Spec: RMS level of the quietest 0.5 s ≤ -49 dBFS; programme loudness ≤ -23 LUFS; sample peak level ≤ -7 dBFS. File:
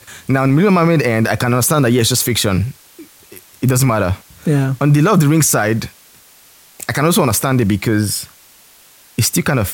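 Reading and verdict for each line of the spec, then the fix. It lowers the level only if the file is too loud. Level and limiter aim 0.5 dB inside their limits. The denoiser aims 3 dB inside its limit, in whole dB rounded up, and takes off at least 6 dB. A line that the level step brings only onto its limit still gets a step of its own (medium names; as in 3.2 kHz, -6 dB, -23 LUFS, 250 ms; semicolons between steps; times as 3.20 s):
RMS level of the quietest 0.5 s -46 dBFS: fail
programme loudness -14.5 LUFS: fail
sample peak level -4.0 dBFS: fail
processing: trim -9 dB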